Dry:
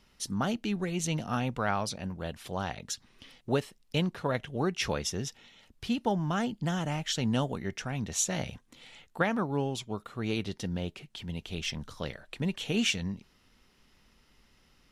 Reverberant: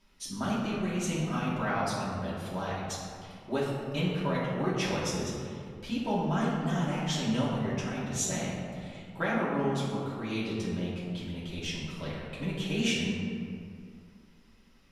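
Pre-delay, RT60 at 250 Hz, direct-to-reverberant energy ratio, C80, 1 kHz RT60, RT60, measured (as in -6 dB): 3 ms, 2.5 s, -8.5 dB, 1.5 dB, 2.2 s, 2.3 s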